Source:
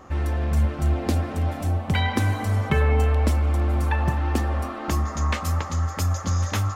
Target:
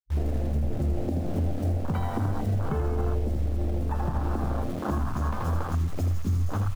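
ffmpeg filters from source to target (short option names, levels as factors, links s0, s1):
-filter_complex "[0:a]acrusher=bits=4:mix=0:aa=0.000001,highpass=f=130:p=1,lowshelf=f=300:g=6.5,bandreject=f=60:t=h:w=6,bandreject=f=120:t=h:w=6,bandreject=f=180:t=h:w=6,bandreject=f=240:t=h:w=6,asplit=5[s0][s1][s2][s3][s4];[s1]adelay=80,afreqshift=-85,volume=0.631[s5];[s2]adelay=160,afreqshift=-170,volume=0.195[s6];[s3]adelay=240,afreqshift=-255,volume=0.061[s7];[s4]adelay=320,afreqshift=-340,volume=0.0188[s8];[s0][s5][s6][s7][s8]amix=inputs=5:normalize=0,afwtdn=0.0708,alimiter=limit=0.119:level=0:latency=1:release=201"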